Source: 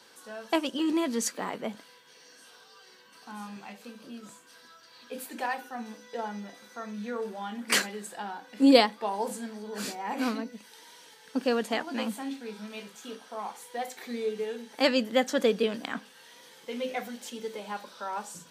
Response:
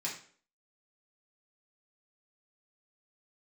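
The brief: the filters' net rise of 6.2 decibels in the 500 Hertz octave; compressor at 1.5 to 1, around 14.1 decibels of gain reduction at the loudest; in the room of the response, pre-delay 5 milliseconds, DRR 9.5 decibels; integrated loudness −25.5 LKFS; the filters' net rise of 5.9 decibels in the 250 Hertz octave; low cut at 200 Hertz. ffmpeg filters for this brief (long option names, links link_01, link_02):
-filter_complex "[0:a]highpass=200,equalizer=frequency=250:width_type=o:gain=6.5,equalizer=frequency=500:width_type=o:gain=5.5,acompressor=threshold=-48dB:ratio=1.5,asplit=2[link_01][link_02];[1:a]atrim=start_sample=2205,adelay=5[link_03];[link_02][link_03]afir=irnorm=-1:irlink=0,volume=-12dB[link_04];[link_01][link_04]amix=inputs=2:normalize=0,volume=11dB"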